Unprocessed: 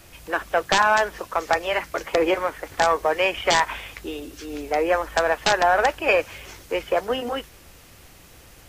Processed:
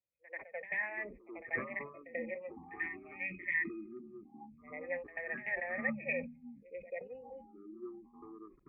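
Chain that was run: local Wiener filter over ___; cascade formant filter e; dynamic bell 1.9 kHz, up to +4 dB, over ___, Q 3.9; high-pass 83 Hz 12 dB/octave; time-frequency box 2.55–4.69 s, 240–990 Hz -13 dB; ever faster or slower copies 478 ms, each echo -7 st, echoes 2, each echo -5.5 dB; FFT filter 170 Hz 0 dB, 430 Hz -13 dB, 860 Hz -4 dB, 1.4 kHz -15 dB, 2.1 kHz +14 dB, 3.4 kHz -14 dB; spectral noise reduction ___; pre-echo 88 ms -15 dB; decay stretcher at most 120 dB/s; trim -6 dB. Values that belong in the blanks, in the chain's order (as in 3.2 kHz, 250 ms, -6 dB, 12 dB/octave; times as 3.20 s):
25 samples, -47 dBFS, 24 dB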